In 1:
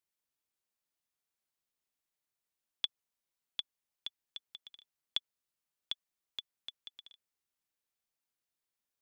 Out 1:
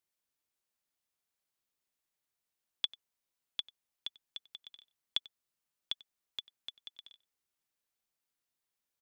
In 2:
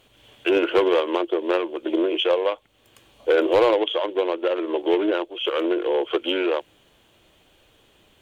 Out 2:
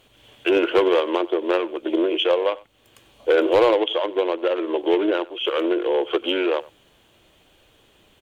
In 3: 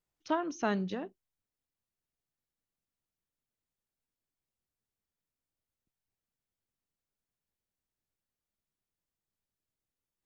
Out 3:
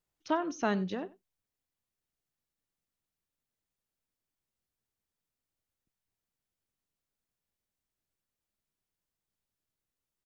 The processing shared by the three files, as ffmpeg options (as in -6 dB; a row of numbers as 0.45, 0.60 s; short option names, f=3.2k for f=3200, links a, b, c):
-filter_complex "[0:a]asplit=2[a][b];[b]adelay=93.29,volume=-21dB,highshelf=f=4k:g=-2.1[c];[a][c]amix=inputs=2:normalize=0,volume=1dB"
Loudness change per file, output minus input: +1.0, +1.0, +1.0 LU